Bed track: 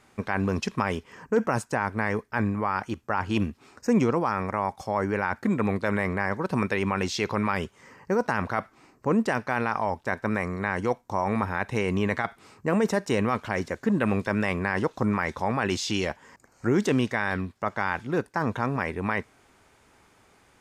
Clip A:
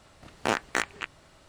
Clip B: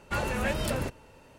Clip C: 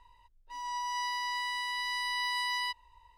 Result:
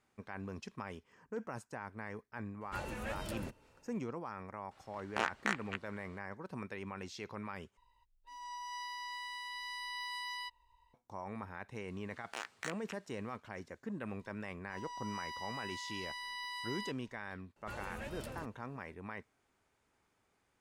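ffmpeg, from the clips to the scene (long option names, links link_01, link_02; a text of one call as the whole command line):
ffmpeg -i bed.wav -i cue0.wav -i cue1.wav -i cue2.wav -filter_complex "[2:a]asplit=2[link_01][link_02];[1:a]asplit=2[link_03][link_04];[3:a]asplit=2[link_05][link_06];[0:a]volume=-18dB[link_07];[link_03]equalizer=frequency=1500:width=0.35:gain=9.5[link_08];[link_04]highpass=frequency=1400:poles=1[link_09];[link_07]asplit=2[link_10][link_11];[link_10]atrim=end=7.774[link_12];[link_05]atrim=end=3.17,asetpts=PTS-STARTPTS,volume=-9.5dB[link_13];[link_11]atrim=start=10.936[link_14];[link_01]atrim=end=1.38,asetpts=PTS-STARTPTS,volume=-12.5dB,afade=type=in:duration=0.004:curve=hsin,afade=type=out:start_time=1.376:duration=0.004:curve=hsin,adelay=2610[link_15];[link_08]atrim=end=1.48,asetpts=PTS-STARTPTS,volume=-15.5dB,afade=type=in:duration=0.004:curve=hsin,afade=type=out:start_time=1.476:duration=0.004:curve=hsin,adelay=4710[link_16];[link_09]atrim=end=1.48,asetpts=PTS-STARTPTS,volume=-12.5dB,afade=type=in:duration=0.004:curve=hsin,afade=type=out:start_time=1.476:duration=0.004:curve=hsin,adelay=11880[link_17];[link_06]atrim=end=3.17,asetpts=PTS-STARTPTS,volume=-10.5dB,afade=type=in:duration=0.004:curve=hsin,afade=type=out:start_time=3.166:duration=0.004:curve=hsin,adelay=14190[link_18];[link_02]atrim=end=1.38,asetpts=PTS-STARTPTS,volume=-16dB,afade=type=in:duration=0.004:curve=hsin,afade=type=out:start_time=1.376:duration=0.004:curve=hsin,adelay=17560[link_19];[link_12][link_13]acrossfade=duration=0.004:curve1=hsin:curve2=hsin[link_20];[link_20][link_14]acrossfade=duration=0.004:curve1=hsin:curve2=hsin[link_21];[link_21][link_15][link_16][link_17][link_18][link_19]amix=inputs=6:normalize=0" out.wav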